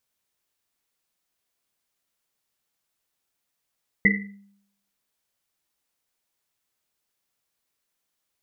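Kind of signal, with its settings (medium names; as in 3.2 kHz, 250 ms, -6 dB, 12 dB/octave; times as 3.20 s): Risset drum, pitch 200 Hz, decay 0.72 s, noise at 2 kHz, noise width 140 Hz, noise 50%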